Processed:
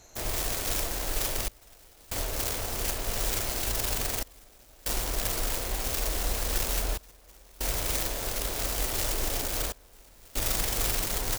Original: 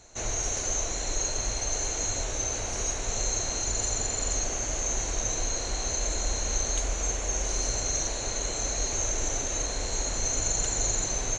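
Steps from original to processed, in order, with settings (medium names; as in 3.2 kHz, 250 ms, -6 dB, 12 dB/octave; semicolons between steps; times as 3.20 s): self-modulated delay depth 0.82 ms; trance gate "xxxxxxx...xxx" 71 bpm -24 dB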